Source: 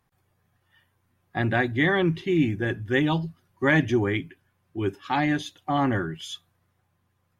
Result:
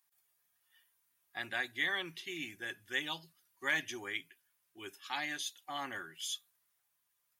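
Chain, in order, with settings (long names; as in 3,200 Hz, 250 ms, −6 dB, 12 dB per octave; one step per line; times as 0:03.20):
first difference
level +3 dB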